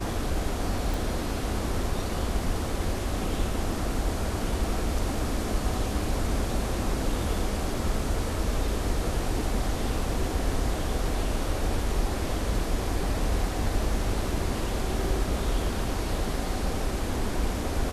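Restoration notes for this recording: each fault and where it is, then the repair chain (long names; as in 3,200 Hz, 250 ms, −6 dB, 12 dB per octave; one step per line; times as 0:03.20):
0:00.94: click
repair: click removal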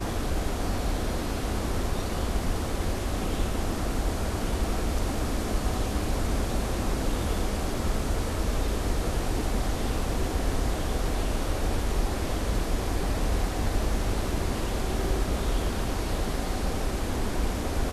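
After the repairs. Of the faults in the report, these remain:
none of them is left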